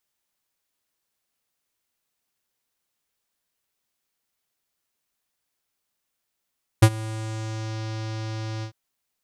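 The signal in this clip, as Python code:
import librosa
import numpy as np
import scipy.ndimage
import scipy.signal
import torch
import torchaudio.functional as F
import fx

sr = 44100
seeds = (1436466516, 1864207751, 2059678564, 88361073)

y = fx.sub_voice(sr, note=45, wave='square', cutoff_hz=5400.0, q=2.2, env_oct=1.0, env_s=0.97, attack_ms=10.0, decay_s=0.06, sustain_db=-21.5, release_s=0.09, note_s=1.81, slope=12)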